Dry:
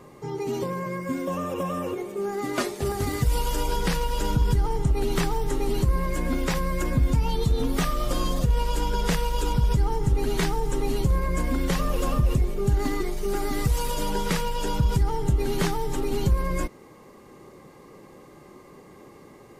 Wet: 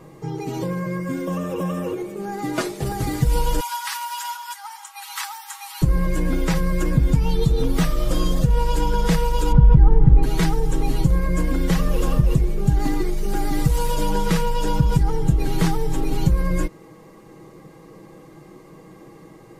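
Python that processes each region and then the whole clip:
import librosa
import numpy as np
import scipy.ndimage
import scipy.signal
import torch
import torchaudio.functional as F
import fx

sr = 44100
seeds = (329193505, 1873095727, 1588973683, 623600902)

y = fx.chain(x, sr, fx.steep_highpass(hz=840.0, slope=72),
    fx.high_shelf(hz=7900.0, db=6.5), at=(3.6, 5.82))
y = fx.chain(y, sr, fx.lowpass(hz=1800.0, slope=12),
    fx.low_shelf(hz=150.0, db=7.5),
    fx.quant_dither(seeds[0], bits=12, dither='none'), at=(9.52, 10.23))
y = fx.low_shelf(y, sr, hz=420.0, db=4.5)
y = y + 0.59 * np.pad(y, (int(6.2 * sr / 1000.0), 0))[:len(y)]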